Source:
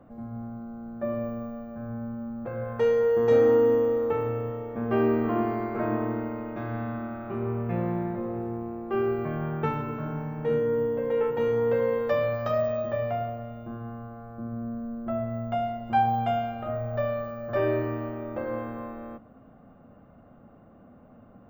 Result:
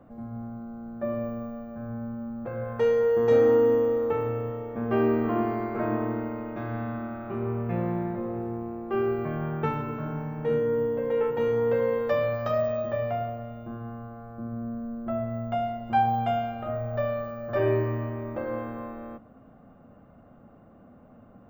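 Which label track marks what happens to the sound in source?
17.540000	18.350000	flutter echo walls apart 7.5 m, dies away in 0.55 s

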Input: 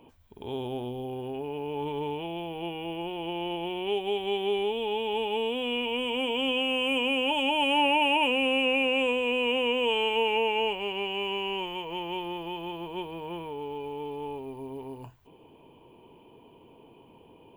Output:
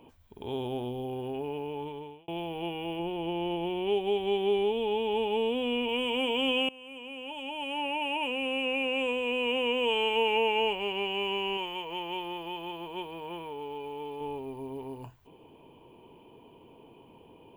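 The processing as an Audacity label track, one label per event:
1.490000	2.280000	fade out
2.990000	5.890000	tilt shelf lows +3.5 dB, about 640 Hz
6.690000	10.470000	fade in linear, from -23 dB
11.570000	14.210000	low shelf 360 Hz -7 dB

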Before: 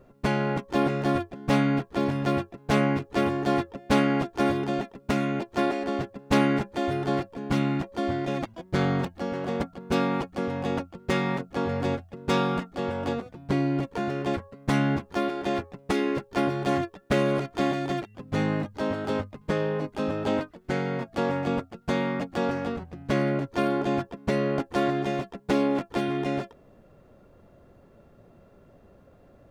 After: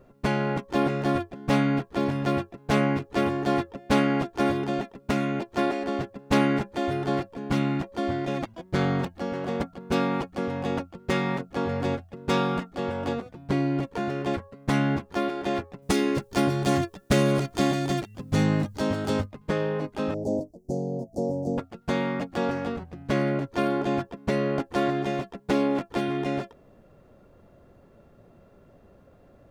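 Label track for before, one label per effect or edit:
15.820000	19.260000	tone controls bass +6 dB, treble +11 dB
20.140000	21.580000	elliptic band-stop 660–5800 Hz, stop band 50 dB

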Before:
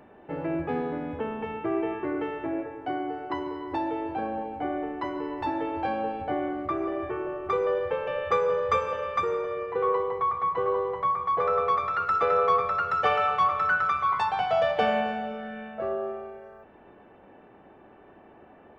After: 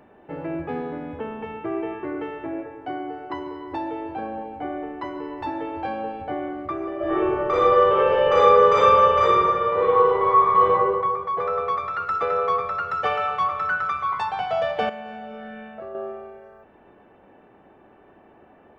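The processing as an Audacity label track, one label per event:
6.960000	10.700000	reverb throw, RT60 1.6 s, DRR -10 dB
14.890000	15.950000	compressor, threshold -32 dBFS

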